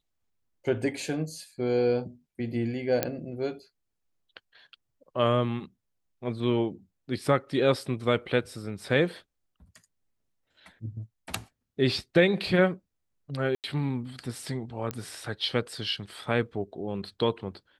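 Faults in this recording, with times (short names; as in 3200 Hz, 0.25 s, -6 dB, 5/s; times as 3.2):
3.03 pop -9 dBFS
13.55–13.64 gap 88 ms
14.91 pop -16 dBFS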